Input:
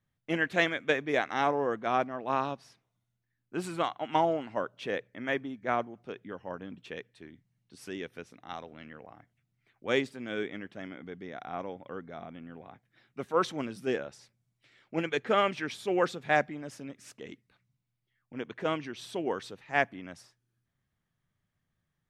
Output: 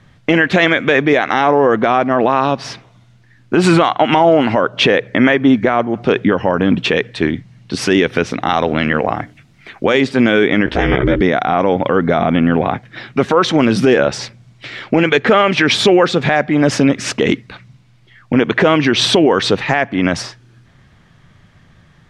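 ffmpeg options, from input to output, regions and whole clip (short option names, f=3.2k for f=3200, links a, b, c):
-filter_complex "[0:a]asettb=1/sr,asplit=3[a][b][c];[a]atrim=end=8.844[d];[b]atrim=start=8.84:end=10.01,asetpts=PTS-STARTPTS,afade=t=in:d=0.004:c=qsin,afade=t=out:st=1.166:d=0.004:c=qsin,highshelf=f=9.7k:g=10.5,bandreject=f=60:t=h:w=6,bandreject=f=120:t=h:w=6,bandreject=f=180:t=h:w=6,bandreject=f=240:t=h:w=6,bandreject=f=300:t=h:w=6,bandreject=f=360:t=h:w=6,bandreject=f=420:t=h:w=6[e];[c]atrim=start=10.006[f];[d][e]acrossfade=d=0.004:c1=hsin:c2=qsin[g];[g][f]acrossfade=d=0.004:c1=qsin:c2=hsin,asettb=1/sr,asplit=3[h][i][j];[h]atrim=end=10.664[k];[i]atrim=start=10.66:end=11.21,asetpts=PTS-STARTPTS,afade=t=in:d=0.004:c=qsin,afade=t=out:st=0.546:d=0.004:c=qsin,aeval=exprs='val(0)*sin(2*PI*130*n/s)':c=same,asplit=2[l][m];[m]adelay=16,volume=-2.5dB[n];[l][n]amix=inputs=2:normalize=0,atrim=end_sample=24255[o];[j]atrim=start=11.206[p];[k][o]acrossfade=d=0.004:c1=hsin:c2=qsin[q];[q][p]acrossfade=d=0.004:c1=qsin:c2=hsin,acompressor=threshold=-37dB:ratio=5,lowpass=5.1k,alimiter=level_in=34.5dB:limit=-1dB:release=50:level=0:latency=1,volume=-1dB"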